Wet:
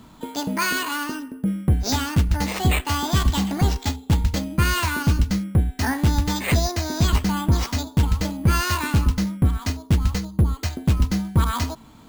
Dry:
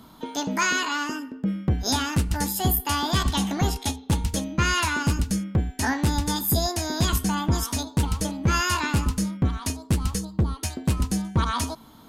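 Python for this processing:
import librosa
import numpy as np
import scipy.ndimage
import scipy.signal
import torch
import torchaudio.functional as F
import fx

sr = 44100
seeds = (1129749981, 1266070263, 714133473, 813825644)

y = fx.low_shelf(x, sr, hz=150.0, db=7.0)
y = np.repeat(y[::4], 4)[:len(y)]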